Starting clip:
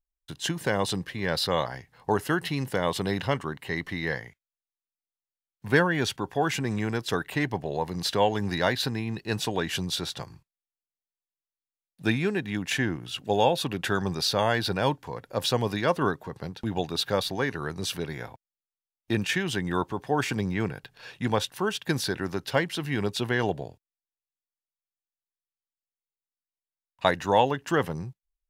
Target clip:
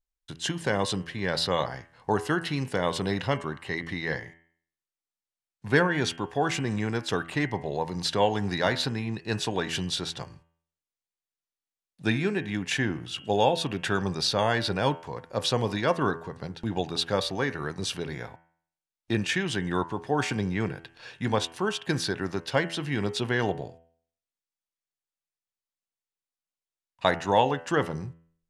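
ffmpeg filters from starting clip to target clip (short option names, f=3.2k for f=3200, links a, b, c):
-af "lowpass=f=9.8k:w=0.5412,lowpass=f=9.8k:w=1.3066,bandreject=f=82.96:t=h:w=4,bandreject=f=165.92:t=h:w=4,bandreject=f=248.88:t=h:w=4,bandreject=f=331.84:t=h:w=4,bandreject=f=414.8:t=h:w=4,bandreject=f=497.76:t=h:w=4,bandreject=f=580.72:t=h:w=4,bandreject=f=663.68:t=h:w=4,bandreject=f=746.64:t=h:w=4,bandreject=f=829.6:t=h:w=4,bandreject=f=912.56:t=h:w=4,bandreject=f=995.52:t=h:w=4,bandreject=f=1.07848k:t=h:w=4,bandreject=f=1.16144k:t=h:w=4,bandreject=f=1.2444k:t=h:w=4,bandreject=f=1.32736k:t=h:w=4,bandreject=f=1.41032k:t=h:w=4,bandreject=f=1.49328k:t=h:w=4,bandreject=f=1.57624k:t=h:w=4,bandreject=f=1.6592k:t=h:w=4,bandreject=f=1.74216k:t=h:w=4,bandreject=f=1.82512k:t=h:w=4,bandreject=f=1.90808k:t=h:w=4,bandreject=f=1.99104k:t=h:w=4,bandreject=f=2.074k:t=h:w=4,bandreject=f=2.15696k:t=h:w=4,bandreject=f=2.23992k:t=h:w=4,bandreject=f=2.32288k:t=h:w=4,bandreject=f=2.40584k:t=h:w=4,bandreject=f=2.4888k:t=h:w=4,bandreject=f=2.57176k:t=h:w=4,bandreject=f=2.65472k:t=h:w=4,bandreject=f=2.73768k:t=h:w=4,bandreject=f=2.82064k:t=h:w=4,bandreject=f=2.9036k:t=h:w=4,bandreject=f=2.98656k:t=h:w=4,bandreject=f=3.06952k:t=h:w=4,bandreject=f=3.15248k:t=h:w=4,bandreject=f=3.23544k:t=h:w=4"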